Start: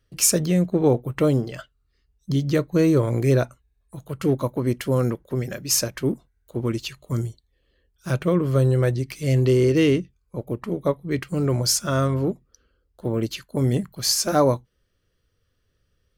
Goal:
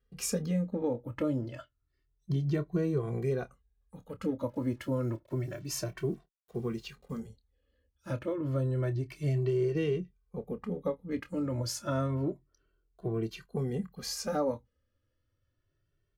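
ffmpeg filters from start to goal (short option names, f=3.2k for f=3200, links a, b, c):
-filter_complex "[0:a]highshelf=f=3.2k:g=-11,asplit=3[a][b][c];[a]afade=t=out:st=4.48:d=0.02[d];[b]acrusher=bits=8:mix=0:aa=0.5,afade=t=in:st=4.48:d=0.02,afade=t=out:st=7.18:d=0.02[e];[c]afade=t=in:st=7.18:d=0.02[f];[d][e][f]amix=inputs=3:normalize=0,acompressor=threshold=-20dB:ratio=4,asplit=2[g][h];[h]adelay=27,volume=-12.5dB[i];[g][i]amix=inputs=2:normalize=0,asplit=2[j][k];[k]adelay=2.1,afreqshift=0.29[l];[j][l]amix=inputs=2:normalize=1,volume=-4.5dB"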